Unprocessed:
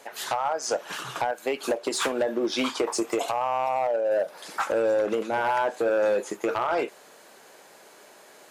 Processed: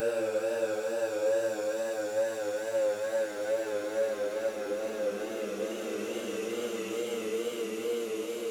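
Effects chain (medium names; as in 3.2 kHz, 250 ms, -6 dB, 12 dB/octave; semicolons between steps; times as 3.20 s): Paulstretch 22×, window 0.25 s, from 4.83 s; vibrato 2.3 Hz 67 cents; pre-emphasis filter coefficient 0.8; trim +5.5 dB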